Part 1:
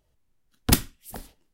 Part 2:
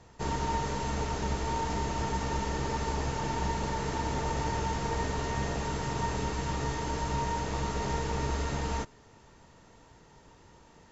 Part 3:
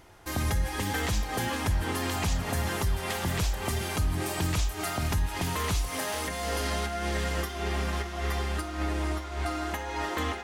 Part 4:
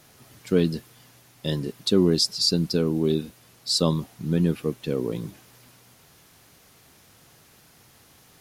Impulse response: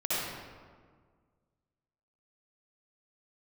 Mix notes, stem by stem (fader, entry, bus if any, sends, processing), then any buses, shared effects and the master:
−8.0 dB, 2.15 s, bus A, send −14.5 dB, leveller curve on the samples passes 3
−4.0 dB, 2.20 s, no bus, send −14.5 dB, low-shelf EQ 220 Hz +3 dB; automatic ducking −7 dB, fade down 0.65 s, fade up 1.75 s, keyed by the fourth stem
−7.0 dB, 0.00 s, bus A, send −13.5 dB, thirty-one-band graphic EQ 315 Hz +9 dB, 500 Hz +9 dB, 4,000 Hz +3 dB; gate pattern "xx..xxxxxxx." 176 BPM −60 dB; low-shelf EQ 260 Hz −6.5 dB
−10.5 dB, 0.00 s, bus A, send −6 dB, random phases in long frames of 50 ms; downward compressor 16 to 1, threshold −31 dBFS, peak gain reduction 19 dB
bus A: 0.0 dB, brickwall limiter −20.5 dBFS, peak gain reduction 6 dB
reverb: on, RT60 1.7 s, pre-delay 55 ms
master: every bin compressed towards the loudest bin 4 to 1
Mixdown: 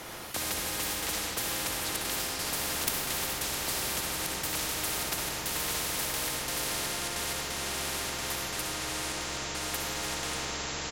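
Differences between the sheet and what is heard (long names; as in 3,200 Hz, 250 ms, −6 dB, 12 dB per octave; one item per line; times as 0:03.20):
stem 1: missing leveller curve on the samples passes 3
stem 3: send −13.5 dB → −4 dB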